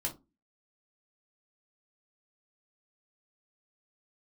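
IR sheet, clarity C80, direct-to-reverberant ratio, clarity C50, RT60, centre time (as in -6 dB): 23.0 dB, -1.5 dB, 14.5 dB, 0.25 s, 12 ms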